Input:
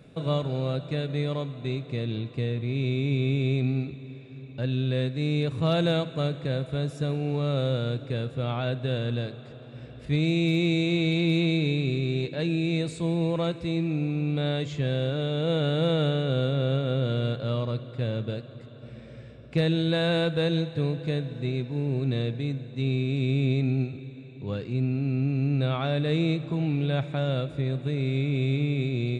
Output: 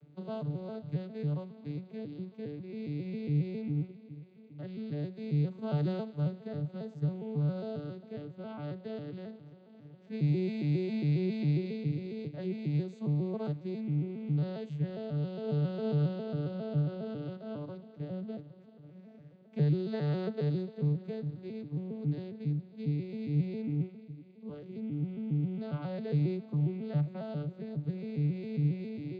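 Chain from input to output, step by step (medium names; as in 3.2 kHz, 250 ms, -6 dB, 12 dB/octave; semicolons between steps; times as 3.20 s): vocoder on a broken chord major triad, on D3, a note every 136 ms; trim -6.5 dB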